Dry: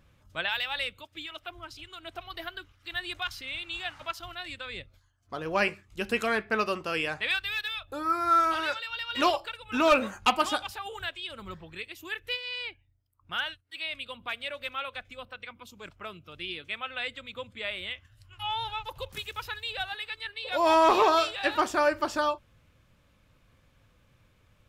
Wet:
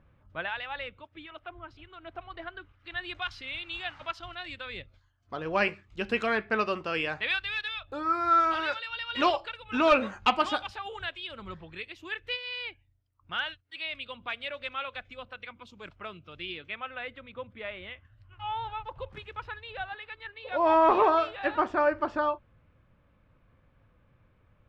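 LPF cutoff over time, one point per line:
2.55 s 1800 Hz
3.36 s 4000 Hz
16.39 s 4000 Hz
16.98 s 1800 Hz

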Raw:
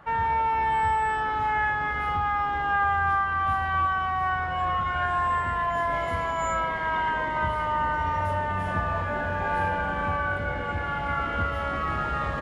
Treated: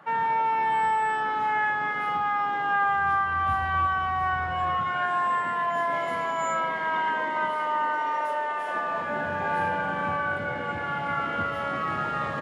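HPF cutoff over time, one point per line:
HPF 24 dB/oct
2.82 s 160 Hz
3.47 s 60 Hz
4.47 s 60 Hz
5.07 s 170 Hz
6.86 s 170 Hz
8.65 s 380 Hz
9.25 s 120 Hz

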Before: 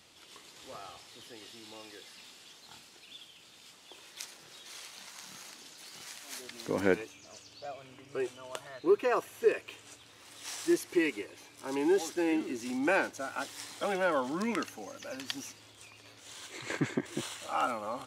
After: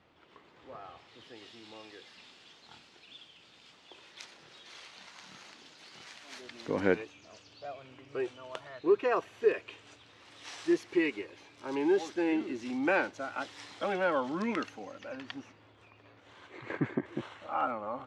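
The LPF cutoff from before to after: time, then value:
0.73 s 1700 Hz
1.39 s 4000 Hz
14.7 s 4000 Hz
15.49 s 1800 Hz

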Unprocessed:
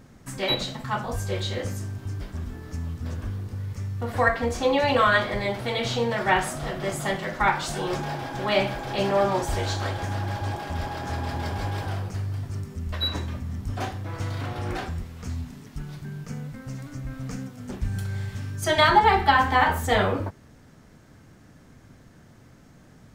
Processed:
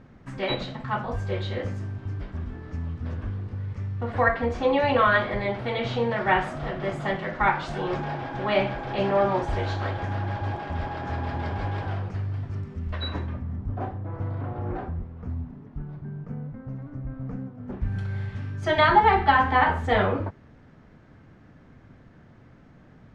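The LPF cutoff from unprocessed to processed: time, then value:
13.01 s 2700 Hz
13.75 s 1000 Hz
17.59 s 1000 Hz
18 s 2700 Hz

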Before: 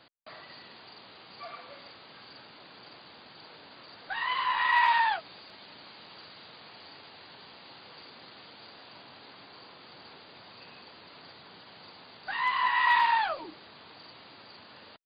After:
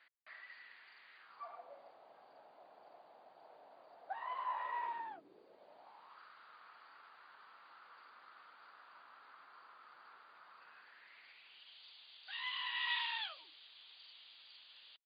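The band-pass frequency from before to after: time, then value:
band-pass, Q 3.9
1.16 s 1900 Hz
1.61 s 690 Hz
4.53 s 690 Hz
5.15 s 290 Hz
6.21 s 1300 Hz
10.61 s 1300 Hz
11.76 s 3300 Hz

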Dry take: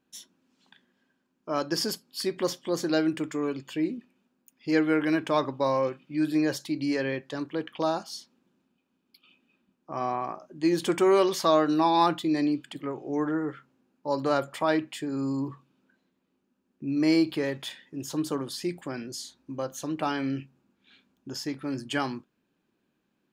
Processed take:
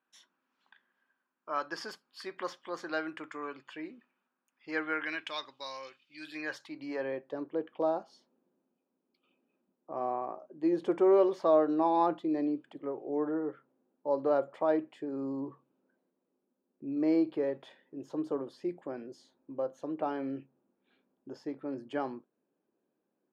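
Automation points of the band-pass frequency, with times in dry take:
band-pass, Q 1.4
4.88 s 1300 Hz
5.43 s 4100 Hz
6.14 s 4100 Hz
6.45 s 1700 Hz
7.31 s 520 Hz

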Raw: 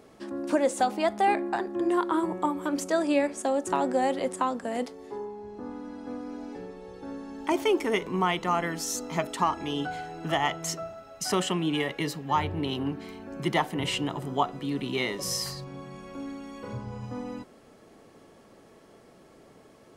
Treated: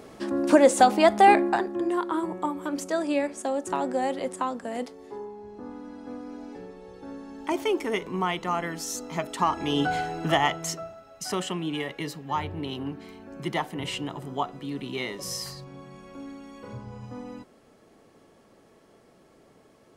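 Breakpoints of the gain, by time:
1.38 s +7.5 dB
1.91 s -1.5 dB
9.25 s -1.5 dB
9.97 s +8.5 dB
11 s -3 dB

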